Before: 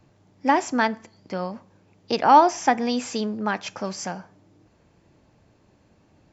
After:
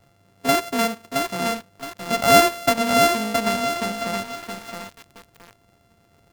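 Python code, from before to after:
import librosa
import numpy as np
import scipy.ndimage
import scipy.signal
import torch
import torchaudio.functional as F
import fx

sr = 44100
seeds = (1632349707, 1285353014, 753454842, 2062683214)

y = np.r_[np.sort(x[:len(x) // 64 * 64].reshape(-1, 64), axis=1).ravel(), x[len(x) // 64 * 64:]]
y = fx.echo_crushed(y, sr, ms=669, feedback_pct=35, bits=6, wet_db=-4.0)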